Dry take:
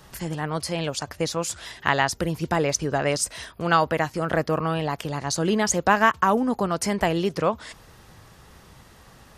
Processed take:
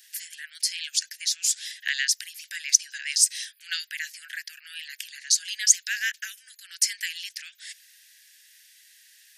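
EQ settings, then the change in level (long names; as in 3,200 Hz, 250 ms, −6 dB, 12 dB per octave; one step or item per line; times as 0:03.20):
spectral tilt +3 dB per octave
dynamic equaliser 5,400 Hz, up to +6 dB, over −35 dBFS, Q 1.1
Butterworth high-pass 1,600 Hz 96 dB per octave
−5.0 dB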